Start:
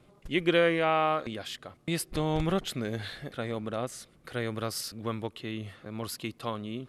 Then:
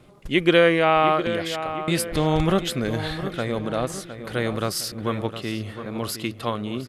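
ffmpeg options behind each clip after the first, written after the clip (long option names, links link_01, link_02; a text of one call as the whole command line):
ffmpeg -i in.wav -filter_complex "[0:a]asplit=2[link_01][link_02];[link_02]adelay=711,lowpass=frequency=2900:poles=1,volume=-10.5dB,asplit=2[link_03][link_04];[link_04]adelay=711,lowpass=frequency=2900:poles=1,volume=0.52,asplit=2[link_05][link_06];[link_06]adelay=711,lowpass=frequency=2900:poles=1,volume=0.52,asplit=2[link_07][link_08];[link_08]adelay=711,lowpass=frequency=2900:poles=1,volume=0.52,asplit=2[link_09][link_10];[link_10]adelay=711,lowpass=frequency=2900:poles=1,volume=0.52,asplit=2[link_11][link_12];[link_12]adelay=711,lowpass=frequency=2900:poles=1,volume=0.52[link_13];[link_01][link_03][link_05][link_07][link_09][link_11][link_13]amix=inputs=7:normalize=0,volume=7.5dB" out.wav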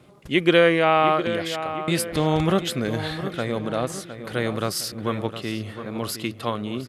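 ffmpeg -i in.wav -af "highpass=74" out.wav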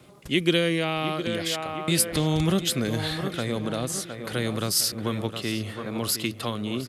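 ffmpeg -i in.wav -filter_complex "[0:a]highshelf=frequency=3500:gain=7,acrossover=split=340|3000[link_01][link_02][link_03];[link_02]acompressor=threshold=-30dB:ratio=6[link_04];[link_01][link_04][link_03]amix=inputs=3:normalize=0" out.wav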